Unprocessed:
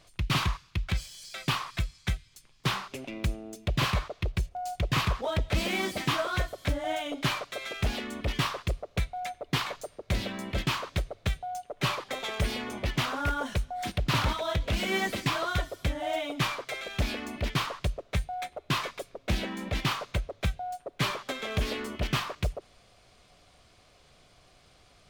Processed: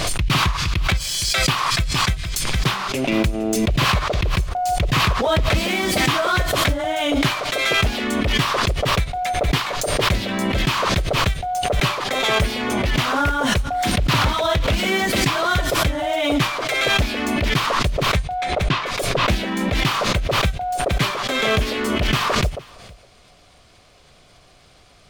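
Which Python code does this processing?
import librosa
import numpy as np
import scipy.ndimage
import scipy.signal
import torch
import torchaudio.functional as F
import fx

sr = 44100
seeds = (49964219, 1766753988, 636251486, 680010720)

y = fx.lowpass(x, sr, hz=fx.line((18.16, 8700.0), (18.85, 3800.0)), slope=12, at=(18.16, 18.85), fade=0.02)
y = y + 10.0 ** (-23.0 / 20.0) * np.pad(y, (int(463 * sr / 1000.0), 0))[:len(y)]
y = fx.pre_swell(y, sr, db_per_s=22.0)
y = y * librosa.db_to_amplitude(7.5)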